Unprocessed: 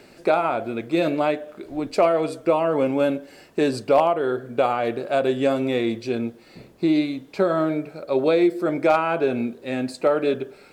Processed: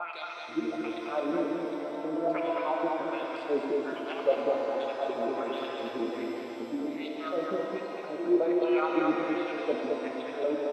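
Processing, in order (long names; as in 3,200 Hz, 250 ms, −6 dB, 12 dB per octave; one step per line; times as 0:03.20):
slices reordered back to front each 120 ms, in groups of 4
shaped tremolo saw up 9.2 Hz, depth 45%
LFO wah 1.3 Hz 270–3,700 Hz, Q 3.4
on a send: single-tap delay 216 ms −4 dB
on the sum: reverb with rising layers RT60 3.6 s, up +7 semitones, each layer −8 dB, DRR 0.5 dB
level −2 dB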